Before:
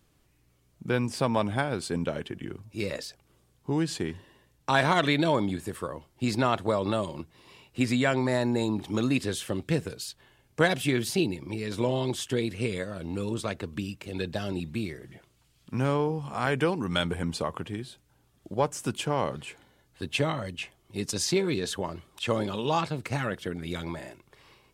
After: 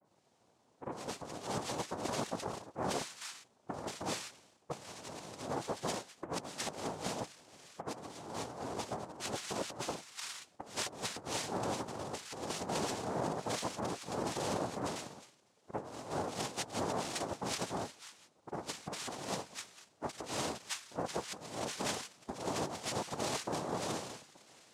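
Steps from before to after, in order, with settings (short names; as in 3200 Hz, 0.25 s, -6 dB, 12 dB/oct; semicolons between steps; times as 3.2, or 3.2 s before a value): spectral delay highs late, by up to 0.339 s; noise vocoder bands 2; negative-ratio compressor -32 dBFS, ratio -0.5; gain -6 dB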